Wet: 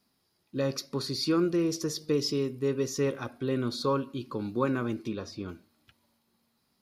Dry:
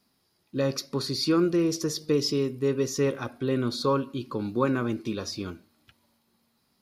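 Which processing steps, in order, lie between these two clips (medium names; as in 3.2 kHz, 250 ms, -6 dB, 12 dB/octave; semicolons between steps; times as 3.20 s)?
5.07–5.48 s: treble shelf 5 kHz -> 2.8 kHz -11.5 dB; trim -3 dB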